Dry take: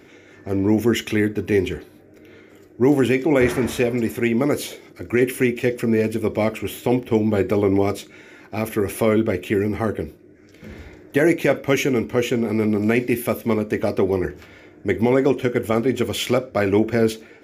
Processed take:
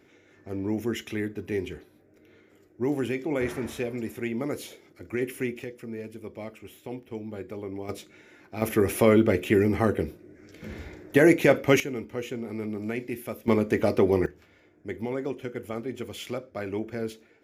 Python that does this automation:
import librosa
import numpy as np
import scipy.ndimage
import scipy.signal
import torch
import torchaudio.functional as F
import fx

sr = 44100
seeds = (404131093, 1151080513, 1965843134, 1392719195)

y = fx.gain(x, sr, db=fx.steps((0.0, -11.0), (5.64, -18.0), (7.89, -9.0), (8.62, -1.0), (11.8, -13.0), (13.48, -2.0), (14.26, -14.0)))